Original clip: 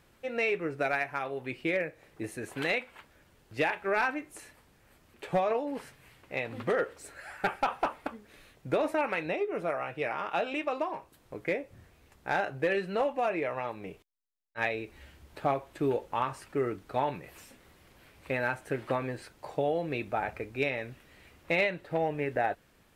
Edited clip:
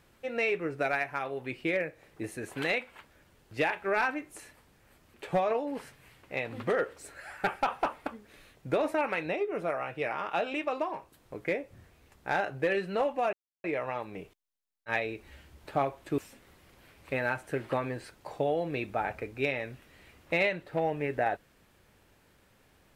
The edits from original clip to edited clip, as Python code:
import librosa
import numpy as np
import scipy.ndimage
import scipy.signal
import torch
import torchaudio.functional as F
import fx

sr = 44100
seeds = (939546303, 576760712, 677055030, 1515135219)

y = fx.edit(x, sr, fx.insert_silence(at_s=13.33, length_s=0.31),
    fx.cut(start_s=15.87, length_s=1.49), tone=tone)